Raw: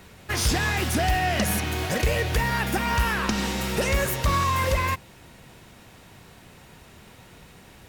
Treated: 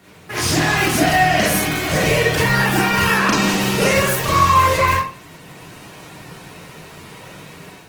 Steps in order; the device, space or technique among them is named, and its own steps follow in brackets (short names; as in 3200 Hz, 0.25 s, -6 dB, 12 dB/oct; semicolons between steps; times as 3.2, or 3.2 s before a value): far-field microphone of a smart speaker (reverb RT60 0.45 s, pre-delay 30 ms, DRR -6 dB; HPF 110 Hz 24 dB/oct; AGC gain up to 6 dB; gain -1 dB; Opus 16 kbps 48000 Hz)